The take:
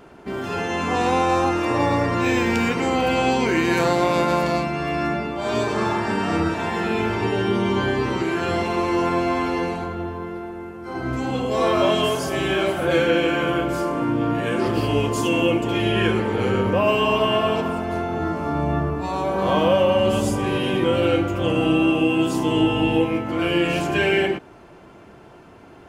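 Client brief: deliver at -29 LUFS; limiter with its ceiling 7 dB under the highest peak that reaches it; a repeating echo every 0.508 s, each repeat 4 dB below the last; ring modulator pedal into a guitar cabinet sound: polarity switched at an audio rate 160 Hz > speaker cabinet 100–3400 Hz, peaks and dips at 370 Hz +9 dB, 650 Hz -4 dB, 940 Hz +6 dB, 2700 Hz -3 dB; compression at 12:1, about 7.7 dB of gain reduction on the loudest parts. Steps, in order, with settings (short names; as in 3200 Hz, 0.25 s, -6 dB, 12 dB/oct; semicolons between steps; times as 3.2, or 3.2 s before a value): compressor 12:1, threshold -22 dBFS; limiter -19.5 dBFS; feedback echo 0.508 s, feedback 63%, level -4 dB; polarity switched at an audio rate 160 Hz; speaker cabinet 100–3400 Hz, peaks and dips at 370 Hz +9 dB, 650 Hz -4 dB, 940 Hz +6 dB, 2700 Hz -3 dB; gain -4.5 dB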